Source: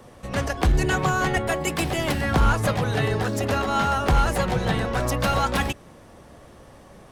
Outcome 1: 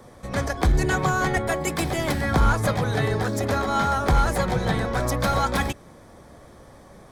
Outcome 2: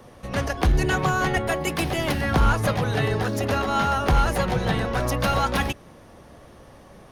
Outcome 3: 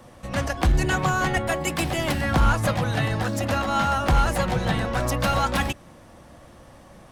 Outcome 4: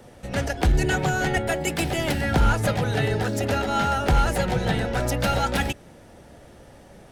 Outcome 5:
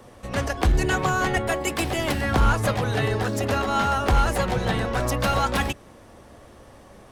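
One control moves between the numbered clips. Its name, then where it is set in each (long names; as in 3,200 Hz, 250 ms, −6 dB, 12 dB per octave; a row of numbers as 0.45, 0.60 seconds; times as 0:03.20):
notch filter, centre frequency: 2,800, 7,700, 420, 1,100, 160 Hertz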